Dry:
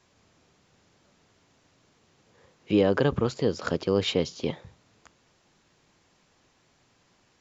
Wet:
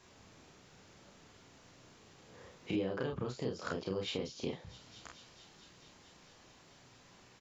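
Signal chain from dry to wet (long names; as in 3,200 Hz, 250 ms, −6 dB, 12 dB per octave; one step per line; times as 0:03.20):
delay with a high-pass on its return 221 ms, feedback 81%, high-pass 3,900 Hz, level −23 dB
downward compressor 4 to 1, threshold −41 dBFS, peak gain reduction 20 dB
on a send: ambience of single reflections 32 ms −3 dB, 48 ms −6.5 dB
on the sum: level +2 dB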